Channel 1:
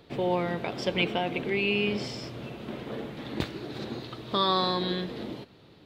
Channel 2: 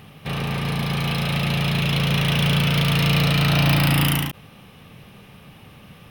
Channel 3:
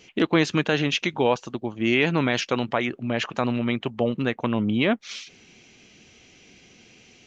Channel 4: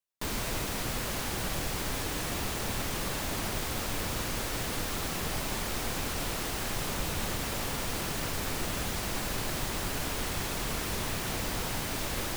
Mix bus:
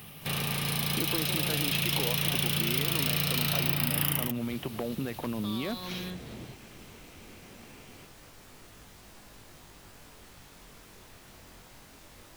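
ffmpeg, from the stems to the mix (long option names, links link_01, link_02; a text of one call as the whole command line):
ffmpeg -i stem1.wav -i stem2.wav -i stem3.wav -i stem4.wav -filter_complex "[0:a]asubboost=boost=7.5:cutoff=110,alimiter=limit=-21dB:level=0:latency=1,adelay=1100,volume=-7.5dB[link_01];[1:a]aemphasis=mode=production:type=75kf,volume=-5.5dB[link_02];[2:a]lowpass=frequency=1400:poles=1,aeval=exprs='0.224*(abs(mod(val(0)/0.224+3,4)-2)-1)':channel_layout=same,alimiter=limit=-21.5dB:level=0:latency=1,adelay=800,volume=2.5dB[link_03];[3:a]flanger=delay=19.5:depth=3:speed=0.22,volume=-16dB[link_04];[link_01][link_02][link_03][link_04]amix=inputs=4:normalize=0,acrossover=split=85|2800[link_05][link_06][link_07];[link_05]acompressor=threshold=-52dB:ratio=4[link_08];[link_06]acompressor=threshold=-31dB:ratio=4[link_09];[link_07]acompressor=threshold=-27dB:ratio=4[link_10];[link_08][link_09][link_10]amix=inputs=3:normalize=0" out.wav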